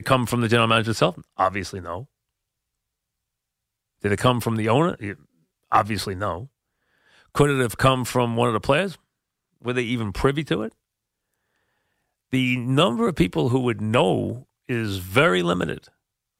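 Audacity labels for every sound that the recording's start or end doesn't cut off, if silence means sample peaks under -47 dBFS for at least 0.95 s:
4.020000	10.720000	sound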